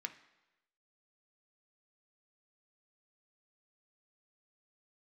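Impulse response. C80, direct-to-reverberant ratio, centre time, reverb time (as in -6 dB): 16.0 dB, 6.0 dB, 8 ms, 1.0 s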